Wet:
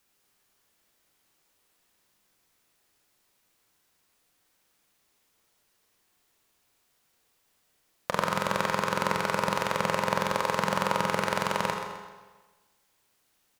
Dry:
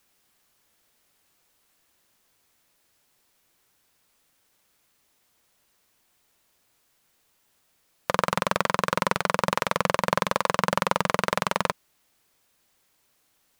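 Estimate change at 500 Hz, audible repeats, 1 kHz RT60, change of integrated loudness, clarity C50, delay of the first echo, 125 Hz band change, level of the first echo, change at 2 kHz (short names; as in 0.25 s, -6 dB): -2.0 dB, 2, 1.3 s, -2.5 dB, 3.5 dB, 0.129 s, -2.0 dB, -9.5 dB, -2.5 dB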